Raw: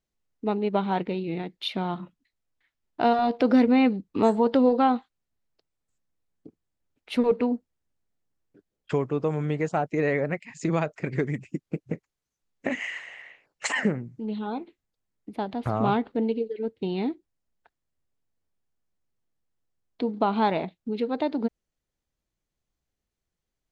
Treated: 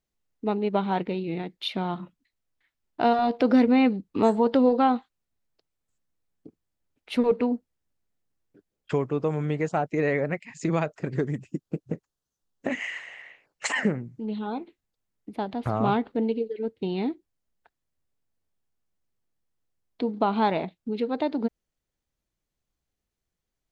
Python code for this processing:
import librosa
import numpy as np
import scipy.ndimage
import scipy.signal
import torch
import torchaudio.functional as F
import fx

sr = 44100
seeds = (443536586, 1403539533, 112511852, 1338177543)

y = fx.peak_eq(x, sr, hz=2200.0, db=-11.5, octaves=0.41, at=(10.93, 12.69))